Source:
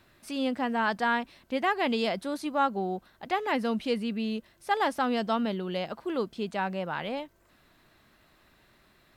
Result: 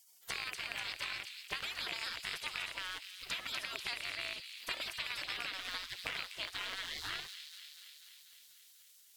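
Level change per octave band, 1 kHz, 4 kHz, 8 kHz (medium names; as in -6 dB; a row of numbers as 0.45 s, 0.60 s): -19.0 dB, +0.5 dB, +3.5 dB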